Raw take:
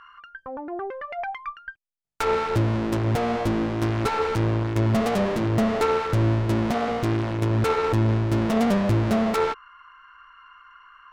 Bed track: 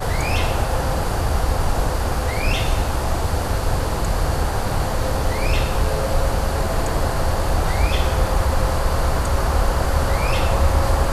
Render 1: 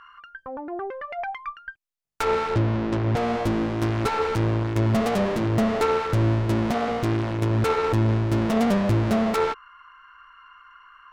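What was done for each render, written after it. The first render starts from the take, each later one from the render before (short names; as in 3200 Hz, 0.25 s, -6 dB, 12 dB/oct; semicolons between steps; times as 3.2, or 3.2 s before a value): 2.54–3.17 air absorption 92 m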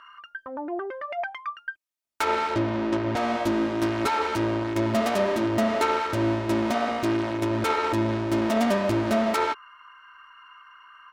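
HPF 250 Hz 6 dB/oct; comb 3.2 ms, depth 63%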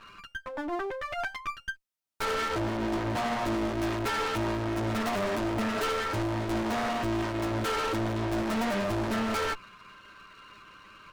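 minimum comb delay 9.6 ms; hard clip -26.5 dBFS, distortion -9 dB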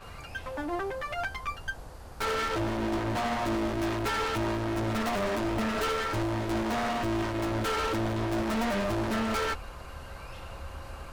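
add bed track -24.5 dB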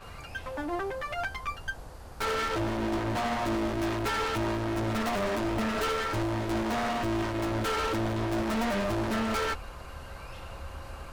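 nothing audible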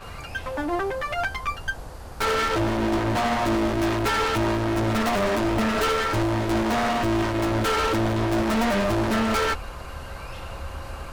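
gain +6.5 dB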